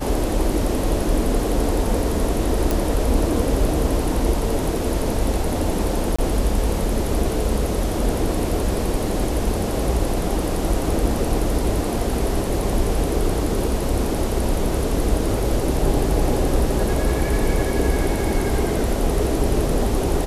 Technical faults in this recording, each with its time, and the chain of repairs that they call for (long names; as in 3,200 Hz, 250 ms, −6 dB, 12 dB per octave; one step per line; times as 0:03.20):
0:02.71: click
0:06.16–0:06.18: drop-out 25 ms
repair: click removal
repair the gap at 0:06.16, 25 ms